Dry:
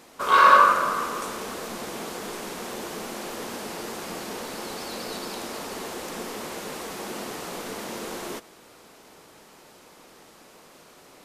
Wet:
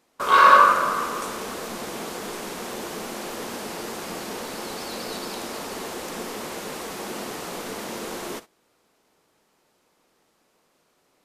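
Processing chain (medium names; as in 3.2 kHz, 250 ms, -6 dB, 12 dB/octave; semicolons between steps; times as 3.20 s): gate -41 dBFS, range -17 dB; trim +1.5 dB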